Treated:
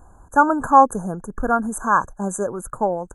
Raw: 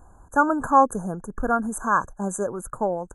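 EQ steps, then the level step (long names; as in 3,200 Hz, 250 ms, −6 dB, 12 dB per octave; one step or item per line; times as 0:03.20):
dynamic equaliser 870 Hz, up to +4 dB, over −29 dBFS, Q 3.7
+2.5 dB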